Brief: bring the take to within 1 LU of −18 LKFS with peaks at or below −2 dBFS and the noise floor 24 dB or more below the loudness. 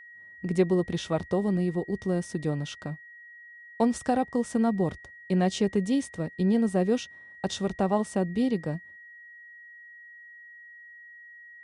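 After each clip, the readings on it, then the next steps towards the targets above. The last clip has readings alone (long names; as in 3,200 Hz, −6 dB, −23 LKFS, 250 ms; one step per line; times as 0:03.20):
interfering tone 1,900 Hz; level of the tone −46 dBFS; integrated loudness −28.0 LKFS; sample peak −12.0 dBFS; target loudness −18.0 LKFS
→ notch filter 1,900 Hz, Q 30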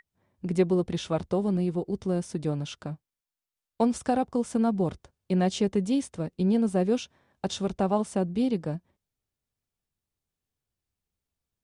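interfering tone none found; integrated loudness −28.0 LKFS; sample peak −12.5 dBFS; target loudness −18.0 LKFS
→ level +10 dB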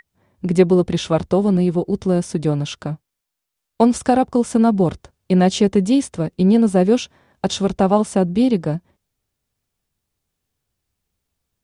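integrated loudness −18.0 LKFS; sample peak −2.5 dBFS; background noise floor −80 dBFS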